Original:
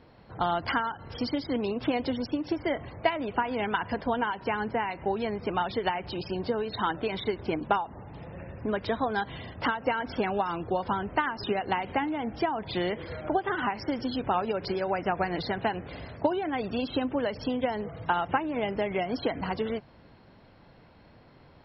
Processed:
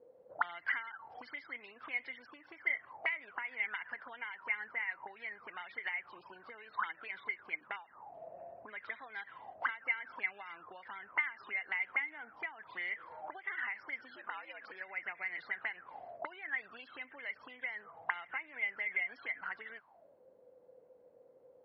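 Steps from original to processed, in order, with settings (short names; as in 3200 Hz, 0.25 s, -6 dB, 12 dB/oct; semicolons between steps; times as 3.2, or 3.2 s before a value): 14.16–14.72 frequency shift +100 Hz; auto-wah 470–2100 Hz, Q 17, up, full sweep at -25.5 dBFS; gain +9 dB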